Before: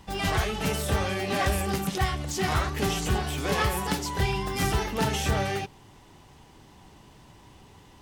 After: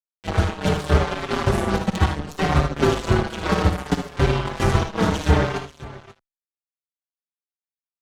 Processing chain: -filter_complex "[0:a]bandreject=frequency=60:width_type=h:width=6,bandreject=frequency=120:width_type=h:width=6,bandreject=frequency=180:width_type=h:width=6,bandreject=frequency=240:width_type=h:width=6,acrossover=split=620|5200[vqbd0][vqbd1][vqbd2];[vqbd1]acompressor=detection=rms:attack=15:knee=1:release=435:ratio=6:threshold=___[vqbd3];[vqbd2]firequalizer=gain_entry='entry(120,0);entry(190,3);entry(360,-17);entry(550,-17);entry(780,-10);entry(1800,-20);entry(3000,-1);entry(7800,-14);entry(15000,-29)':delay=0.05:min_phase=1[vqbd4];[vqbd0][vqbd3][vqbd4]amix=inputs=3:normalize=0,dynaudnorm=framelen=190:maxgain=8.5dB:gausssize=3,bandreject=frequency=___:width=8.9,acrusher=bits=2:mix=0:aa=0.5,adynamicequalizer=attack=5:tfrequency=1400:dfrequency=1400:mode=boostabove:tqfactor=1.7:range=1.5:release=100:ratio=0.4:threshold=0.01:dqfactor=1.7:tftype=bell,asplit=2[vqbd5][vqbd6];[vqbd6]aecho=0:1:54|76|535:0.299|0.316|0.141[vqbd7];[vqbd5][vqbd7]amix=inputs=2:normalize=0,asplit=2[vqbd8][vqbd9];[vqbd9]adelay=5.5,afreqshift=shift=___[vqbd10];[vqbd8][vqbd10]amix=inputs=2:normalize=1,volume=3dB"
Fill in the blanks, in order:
-40dB, 5k, -0.66